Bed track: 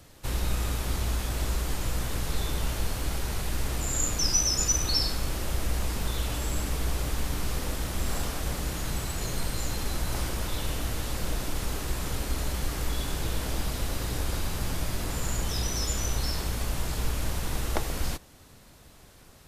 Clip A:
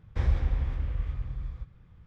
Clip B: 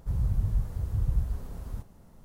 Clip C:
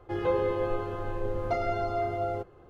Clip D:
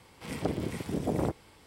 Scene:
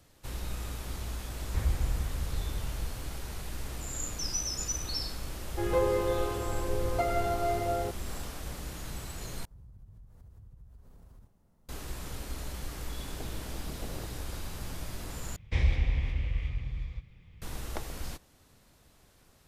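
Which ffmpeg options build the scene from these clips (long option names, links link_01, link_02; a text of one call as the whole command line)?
ffmpeg -i bed.wav -i cue0.wav -i cue1.wav -i cue2.wav -i cue3.wav -filter_complex "[1:a]asplit=2[link_01][link_02];[0:a]volume=-8.5dB[link_03];[2:a]acompressor=threshold=-36dB:ratio=6:attack=3.2:release=140:knee=1:detection=peak[link_04];[link_02]highshelf=frequency=1800:width_type=q:width=3:gain=6.5[link_05];[link_03]asplit=3[link_06][link_07][link_08];[link_06]atrim=end=9.454[link_09];[link_04]atrim=end=2.24,asetpts=PTS-STARTPTS,volume=-13dB[link_10];[link_07]atrim=start=11.686:end=15.364[link_11];[link_05]atrim=end=2.06,asetpts=PTS-STARTPTS,volume=-0.5dB[link_12];[link_08]atrim=start=17.416[link_13];[link_01]atrim=end=2.06,asetpts=PTS-STARTPTS,volume=-4dB,afade=type=in:duration=0.004:curve=hsin,afade=type=out:start_time=2.056:duration=0.004:curve=hsin,adelay=1380[link_14];[3:a]atrim=end=2.69,asetpts=PTS-STARTPTS,volume=-0.5dB,afade=type=in:duration=0.004:curve=hsin,afade=type=out:start_time=2.686:duration=0.004:curve=hsin,adelay=5480[link_15];[4:a]atrim=end=1.66,asetpts=PTS-STARTPTS,volume=-15.5dB,afade=type=in:duration=0.004:curve=hsin,afade=type=out:start_time=1.656:duration=0.004:curve=hsin,adelay=12750[link_16];[link_09][link_10]acrossfade=duration=0.004:curve1=hsin:curve2=hsin[link_17];[link_17][link_11]acrossfade=duration=0.004:curve1=hsin:curve2=hsin[link_18];[link_18][link_12]acrossfade=duration=0.004:curve1=hsin:curve2=hsin[link_19];[link_19][link_13]acrossfade=duration=0.004:curve1=hsin:curve2=hsin[link_20];[link_20][link_14][link_15][link_16]amix=inputs=4:normalize=0" out.wav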